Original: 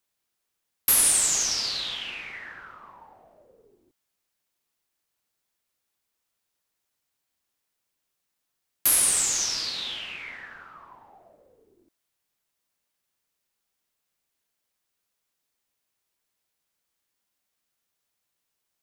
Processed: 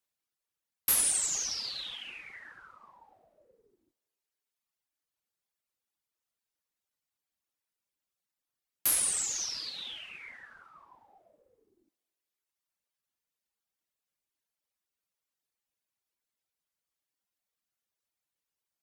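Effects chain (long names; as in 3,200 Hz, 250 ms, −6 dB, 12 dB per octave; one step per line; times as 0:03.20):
reverb reduction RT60 1.5 s
coupled-rooms reverb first 0.22 s, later 2.6 s, from −21 dB, DRR 17 dB
harmonic generator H 3 −23 dB, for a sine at −6.5 dBFS
level −4.5 dB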